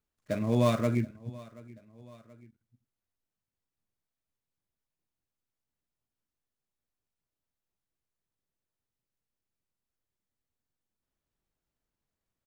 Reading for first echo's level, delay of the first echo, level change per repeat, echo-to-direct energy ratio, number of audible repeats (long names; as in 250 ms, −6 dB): −21.5 dB, 730 ms, −5.5 dB, −20.5 dB, 2